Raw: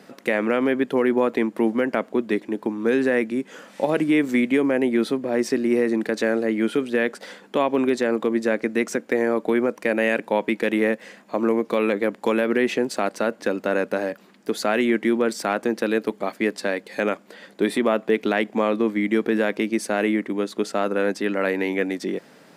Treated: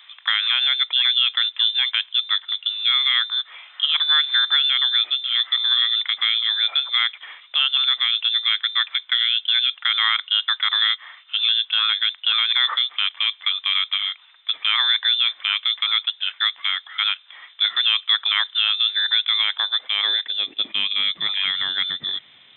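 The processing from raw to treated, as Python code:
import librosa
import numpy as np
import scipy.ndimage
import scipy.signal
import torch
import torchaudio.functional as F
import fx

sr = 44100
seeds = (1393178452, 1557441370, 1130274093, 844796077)

y = fx.freq_invert(x, sr, carrier_hz=3800)
y = fx.filter_sweep_highpass(y, sr, from_hz=1100.0, to_hz=120.0, start_s=19.23, end_s=21.4, q=1.8)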